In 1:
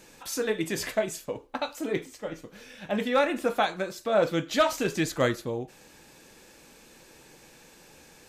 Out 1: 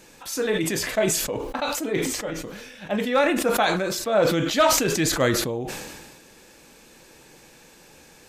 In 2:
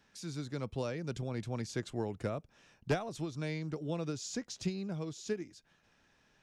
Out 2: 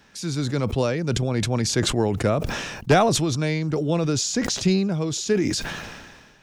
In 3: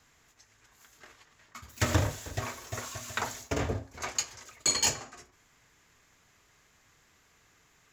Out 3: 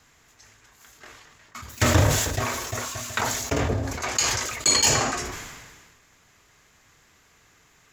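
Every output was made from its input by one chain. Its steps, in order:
sustainer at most 36 dB/s; match loudness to -23 LUFS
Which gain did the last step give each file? +2.5, +13.5, +6.0 dB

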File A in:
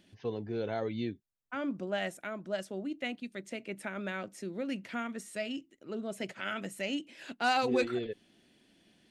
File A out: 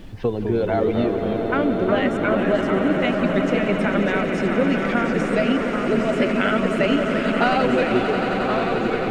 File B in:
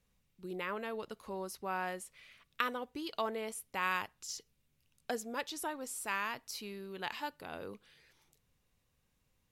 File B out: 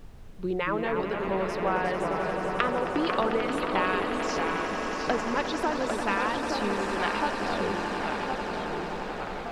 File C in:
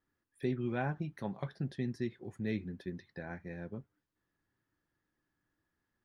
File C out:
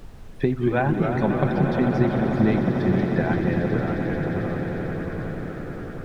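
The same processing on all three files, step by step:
reverb removal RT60 1.8 s; LPF 4700 Hz 12 dB/oct; high shelf 2200 Hz -7.5 dB; compressor, threshold -38 dBFS; on a send: swelling echo 89 ms, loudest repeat 8, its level -11.5 dB; on the sum: echoes that change speed 0.177 s, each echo -2 st, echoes 3, each echo -6 dB; added noise brown -59 dBFS; normalise peaks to -6 dBFS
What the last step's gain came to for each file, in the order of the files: +19.5, +14.5, +20.0 dB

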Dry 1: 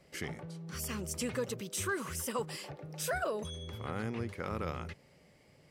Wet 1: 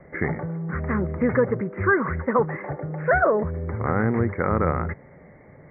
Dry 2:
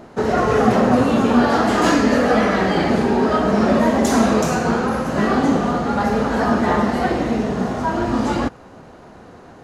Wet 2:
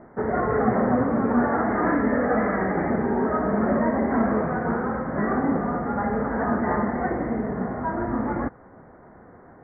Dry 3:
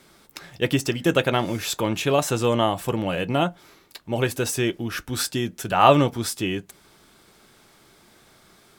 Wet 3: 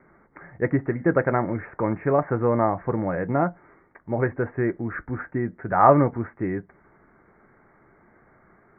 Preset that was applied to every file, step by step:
steep low-pass 2100 Hz 96 dB/oct; match loudness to -24 LUFS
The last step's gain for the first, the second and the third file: +15.0, -6.5, 0.0 dB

